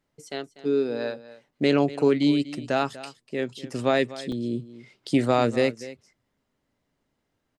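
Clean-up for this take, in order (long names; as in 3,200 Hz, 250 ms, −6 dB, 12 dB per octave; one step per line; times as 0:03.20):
repair the gap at 0:01.51/0:04.32, 3 ms
echo removal 244 ms −16.5 dB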